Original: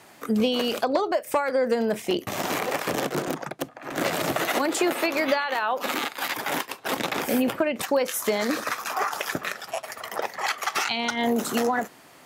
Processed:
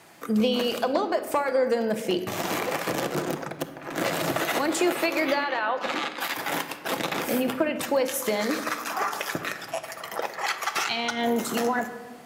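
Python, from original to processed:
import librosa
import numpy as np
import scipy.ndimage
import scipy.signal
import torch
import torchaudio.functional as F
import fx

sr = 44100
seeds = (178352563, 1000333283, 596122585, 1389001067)

y = fx.lowpass(x, sr, hz=fx.line((5.48, 3900.0), (6.19, 6500.0)), slope=12, at=(5.48, 6.19), fade=0.02)
y = fx.room_shoebox(y, sr, seeds[0], volume_m3=1700.0, walls='mixed', distance_m=0.73)
y = y * librosa.db_to_amplitude(-1.5)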